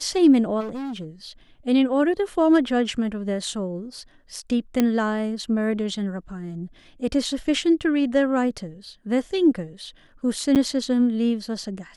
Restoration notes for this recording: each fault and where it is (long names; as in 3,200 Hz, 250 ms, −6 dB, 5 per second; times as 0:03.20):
0:00.60–0:01.05: clipping −28 dBFS
0:04.80: click −7 dBFS
0:10.55–0:10.56: drop-out 8.2 ms